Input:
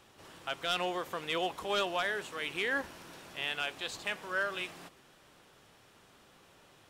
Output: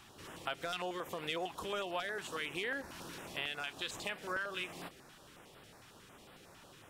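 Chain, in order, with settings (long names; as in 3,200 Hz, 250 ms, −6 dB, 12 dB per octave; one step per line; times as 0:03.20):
downward compressor 5 to 1, threshold −39 dBFS, peak gain reduction 11 dB
notch on a step sequencer 11 Hz 500–6,300 Hz
level +4.5 dB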